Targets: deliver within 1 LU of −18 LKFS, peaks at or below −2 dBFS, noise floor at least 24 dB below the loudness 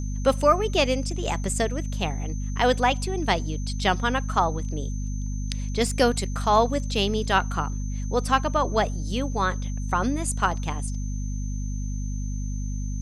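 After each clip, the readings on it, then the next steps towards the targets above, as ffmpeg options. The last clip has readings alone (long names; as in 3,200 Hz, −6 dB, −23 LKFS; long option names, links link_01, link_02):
mains hum 50 Hz; hum harmonics up to 250 Hz; level of the hum −26 dBFS; interfering tone 6,200 Hz; level of the tone −44 dBFS; integrated loudness −25.5 LKFS; sample peak −6.5 dBFS; target loudness −18.0 LKFS
→ -af "bandreject=frequency=50:width_type=h:width=4,bandreject=frequency=100:width_type=h:width=4,bandreject=frequency=150:width_type=h:width=4,bandreject=frequency=200:width_type=h:width=4,bandreject=frequency=250:width_type=h:width=4"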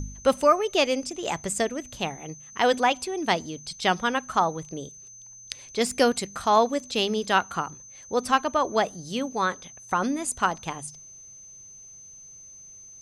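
mains hum none found; interfering tone 6,200 Hz; level of the tone −44 dBFS
→ -af "bandreject=frequency=6200:width=30"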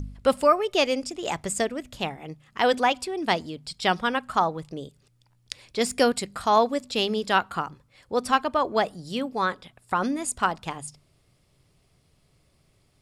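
interfering tone none found; integrated loudness −25.5 LKFS; sample peak −7.0 dBFS; target loudness −18.0 LKFS
→ -af "volume=7.5dB,alimiter=limit=-2dB:level=0:latency=1"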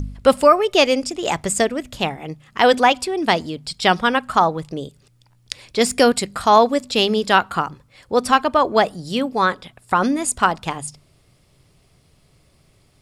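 integrated loudness −18.5 LKFS; sample peak −2.0 dBFS; background noise floor −57 dBFS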